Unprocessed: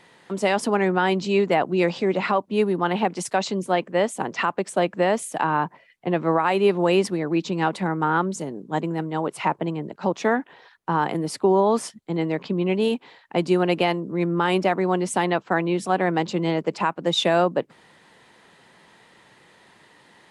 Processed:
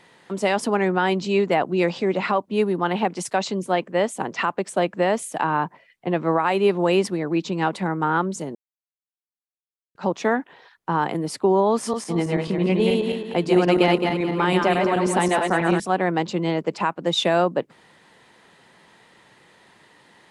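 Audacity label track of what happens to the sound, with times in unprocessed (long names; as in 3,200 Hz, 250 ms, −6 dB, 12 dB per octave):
8.550000	9.950000	silence
11.720000	15.800000	feedback delay that plays each chunk backwards 108 ms, feedback 62%, level −2.5 dB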